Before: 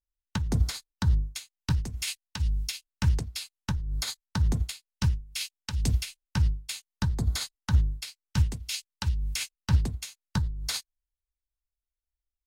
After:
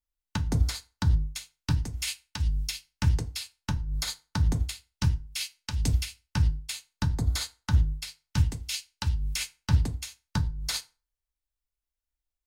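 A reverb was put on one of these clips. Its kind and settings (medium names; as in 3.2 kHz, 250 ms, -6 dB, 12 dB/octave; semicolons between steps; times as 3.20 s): FDN reverb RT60 0.32 s, low-frequency decay 1×, high-frequency decay 0.8×, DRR 9.5 dB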